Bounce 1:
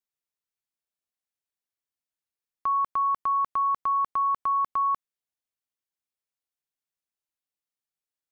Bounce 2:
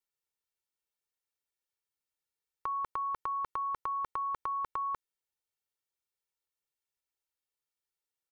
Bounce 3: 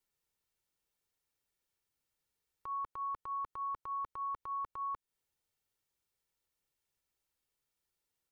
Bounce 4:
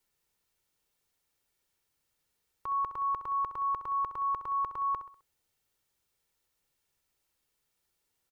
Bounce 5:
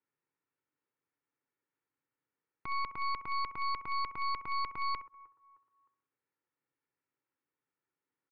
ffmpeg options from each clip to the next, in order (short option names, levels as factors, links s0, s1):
-af "aecho=1:1:2.2:0.71,volume=0.75"
-af "lowshelf=f=300:g=8,alimiter=level_in=5.01:limit=0.0631:level=0:latency=1:release=222,volume=0.2,volume=1.58"
-af "aecho=1:1:65|130|195|260:0.266|0.112|0.0469|0.0197,volume=2.11"
-af "highpass=f=120:w=0.5412,highpass=f=120:w=1.3066,equalizer=f=200:t=q:w=4:g=-8,equalizer=f=280:t=q:w=4:g=7,equalizer=f=670:t=q:w=4:g=-8,lowpass=f=2100:w=0.5412,lowpass=f=2100:w=1.3066,aecho=1:1:309|618|927:0.0708|0.0319|0.0143,aeval=exprs='0.0562*(cos(1*acos(clip(val(0)/0.0562,-1,1)))-cos(1*PI/2))+0.02*(cos(4*acos(clip(val(0)/0.0562,-1,1)))-cos(4*PI/2))':c=same,volume=0.562"